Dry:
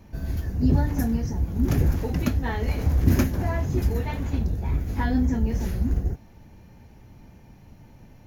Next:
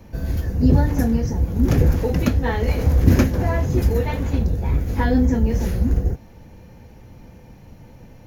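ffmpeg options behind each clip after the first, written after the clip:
ffmpeg -i in.wav -filter_complex "[0:a]equalizer=frequency=500:width=7.9:gain=9.5,acrossover=split=280|6900[link_01][link_02][link_03];[link_03]alimiter=level_in=9dB:limit=-24dB:level=0:latency=1:release=363,volume=-9dB[link_04];[link_01][link_02][link_04]amix=inputs=3:normalize=0,volume=5dB" out.wav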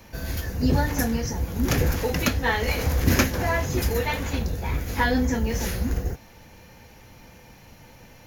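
ffmpeg -i in.wav -af "tiltshelf=frequency=750:gain=-7.5" out.wav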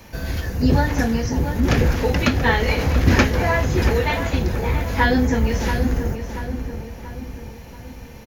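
ffmpeg -i in.wav -filter_complex "[0:a]asplit=2[link_01][link_02];[link_02]adelay=683,lowpass=frequency=1900:poles=1,volume=-7.5dB,asplit=2[link_03][link_04];[link_04]adelay=683,lowpass=frequency=1900:poles=1,volume=0.51,asplit=2[link_05][link_06];[link_06]adelay=683,lowpass=frequency=1900:poles=1,volume=0.51,asplit=2[link_07][link_08];[link_08]adelay=683,lowpass=frequency=1900:poles=1,volume=0.51,asplit=2[link_09][link_10];[link_10]adelay=683,lowpass=frequency=1900:poles=1,volume=0.51,asplit=2[link_11][link_12];[link_12]adelay=683,lowpass=frequency=1900:poles=1,volume=0.51[link_13];[link_01][link_03][link_05][link_07][link_09][link_11][link_13]amix=inputs=7:normalize=0,acrossover=split=5200[link_14][link_15];[link_15]acompressor=threshold=-48dB:ratio=4:attack=1:release=60[link_16];[link_14][link_16]amix=inputs=2:normalize=0,volume=4.5dB" out.wav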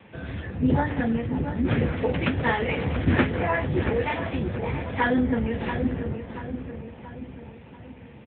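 ffmpeg -i in.wav -af "volume=-3.5dB" -ar 8000 -c:a libopencore_amrnb -b:a 7950 out.amr

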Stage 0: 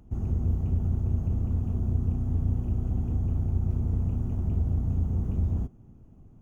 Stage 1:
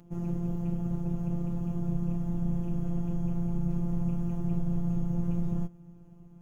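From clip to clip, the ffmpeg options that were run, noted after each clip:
ffmpeg -i in.wav -af "asubboost=boost=3:cutoff=110,highpass=78,afftfilt=real='hypot(re,im)*cos(PI*b)':imag='0':win_size=1024:overlap=0.75,volume=6.5dB" out.wav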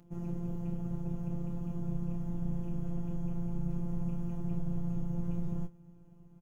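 ffmpeg -i in.wav -filter_complex "[0:a]asplit=2[link_01][link_02];[link_02]adelay=27,volume=-12dB[link_03];[link_01][link_03]amix=inputs=2:normalize=0,volume=-4.5dB" out.wav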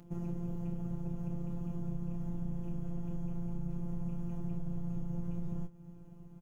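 ffmpeg -i in.wav -af "acompressor=threshold=-40dB:ratio=2.5,volume=4.5dB" out.wav

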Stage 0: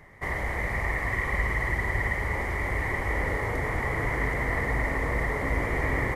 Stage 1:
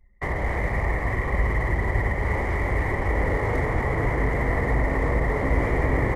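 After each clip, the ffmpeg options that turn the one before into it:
ffmpeg -i in.wav -filter_complex "[0:a]anlmdn=1,acrossover=split=210|940[link_01][link_02][link_03];[link_03]alimiter=level_in=6.5dB:limit=-24dB:level=0:latency=1:release=417,volume=-6.5dB[link_04];[link_01][link_02][link_04]amix=inputs=3:normalize=0,volume=6dB" out.wav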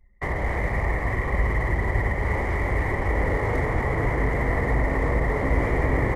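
ffmpeg -i in.wav -af anull out.wav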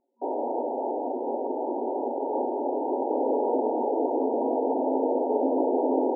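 ffmpeg -i in.wav -af "afftfilt=real='re*between(b*sr/4096,230,960)':imag='im*between(b*sr/4096,230,960)':win_size=4096:overlap=0.75,volume=3.5dB" out.wav

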